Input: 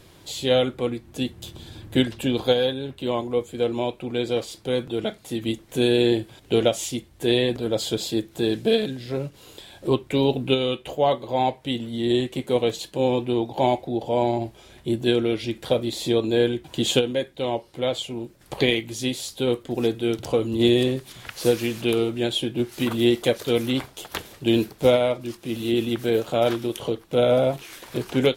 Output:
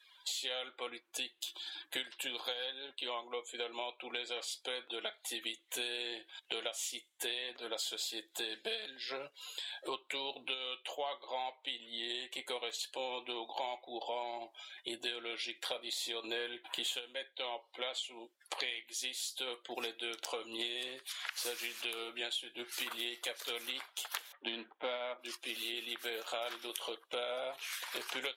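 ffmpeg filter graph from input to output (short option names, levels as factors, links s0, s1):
-filter_complex "[0:a]asettb=1/sr,asplit=3[s0][s1][s2];[s0]atrim=end=16.244[s3];[s1]atrim=start=16.24:end=16.95,asetpts=PTS-STARTPTS,afade=t=in:d=0.004:c=qsin,afade=t=out:st=0.706:d=0.004:c=qsin,equalizer=f=5700:w=1.4:g=-7.5,acontrast=26[s4];[s2]atrim=start=16.946[s5];[s3][s4]acrossfade=d=0.004:c1=hsin:c2=qsin[s6];[s6][s5]acrossfade=d=0.004:c1=qsin:c2=hsin,asettb=1/sr,asplit=3[s7][s8][s9];[s7]atrim=end=24.324[s10];[s8]atrim=start=24.32:end=25.19,asetpts=PTS-STARTPTS,afade=t=in:d=0.004:c=qsin,afade=t=out:st=0.866:d=0.004:c=qsin,adynamicsmooth=sensitivity=5.5:basefreq=1600,highpass=200,equalizer=f=230:t=q:w=4:g=8,equalizer=f=420:t=q:w=4:g=-4,equalizer=f=2600:t=q:w=4:g=-5,lowpass=f=3800:w=0.5412,lowpass=f=3800:w=1.3066[s11];[s9]atrim=start=25.186[s12];[s10][s11]acrossfade=d=0.004:c1=hsin:c2=qsin[s13];[s13][s12]acrossfade=d=0.004:c1=qsin:c2=hsin,highpass=1100,afftdn=nr=24:nf=-53,acompressor=threshold=0.00891:ratio=6,volume=1.58"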